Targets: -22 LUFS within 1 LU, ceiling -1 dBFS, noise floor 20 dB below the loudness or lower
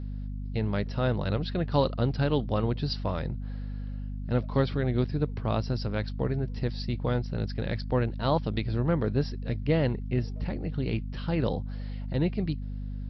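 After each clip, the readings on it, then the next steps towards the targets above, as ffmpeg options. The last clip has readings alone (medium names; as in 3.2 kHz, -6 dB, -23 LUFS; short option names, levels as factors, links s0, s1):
hum 50 Hz; highest harmonic 250 Hz; hum level -32 dBFS; loudness -30.0 LUFS; peak level -10.5 dBFS; loudness target -22.0 LUFS
-> -af "bandreject=f=50:t=h:w=4,bandreject=f=100:t=h:w=4,bandreject=f=150:t=h:w=4,bandreject=f=200:t=h:w=4,bandreject=f=250:t=h:w=4"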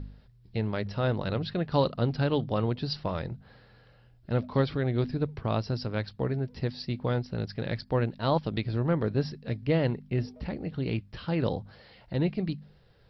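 hum not found; loudness -30.5 LUFS; peak level -12.0 dBFS; loudness target -22.0 LUFS
-> -af "volume=2.66"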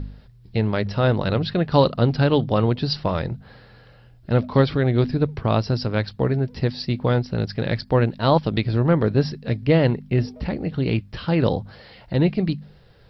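loudness -22.0 LUFS; peak level -3.5 dBFS; noise floor -50 dBFS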